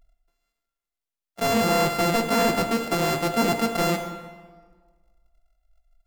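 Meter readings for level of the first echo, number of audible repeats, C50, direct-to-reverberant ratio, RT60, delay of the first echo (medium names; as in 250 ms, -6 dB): no echo, no echo, 8.0 dB, 5.5 dB, 1.5 s, no echo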